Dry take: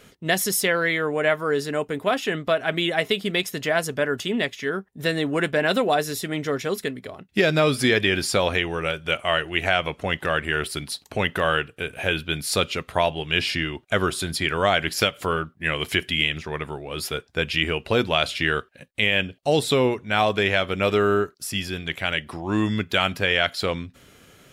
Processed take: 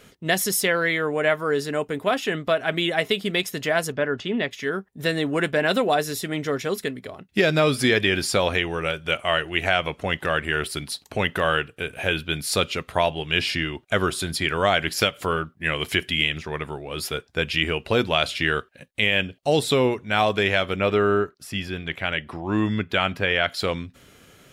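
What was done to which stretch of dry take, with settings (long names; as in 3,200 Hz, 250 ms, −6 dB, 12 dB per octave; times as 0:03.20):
0:03.92–0:04.51: high-frequency loss of the air 160 metres
0:20.76–0:23.50: bass and treble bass 0 dB, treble −10 dB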